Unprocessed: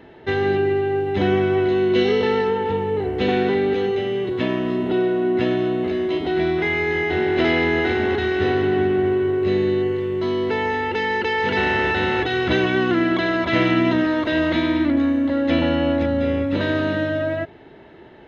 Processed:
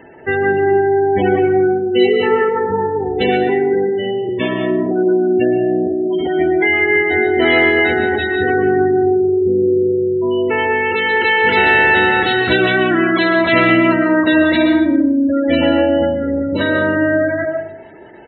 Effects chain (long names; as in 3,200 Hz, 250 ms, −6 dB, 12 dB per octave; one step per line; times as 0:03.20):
gate on every frequency bin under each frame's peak −20 dB strong
spectral tilt +2 dB per octave
far-end echo of a speakerphone 120 ms, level −23 dB
on a send at −5 dB: convolution reverb RT60 0.75 s, pre-delay 95 ms
on the sum: level +6.5 dB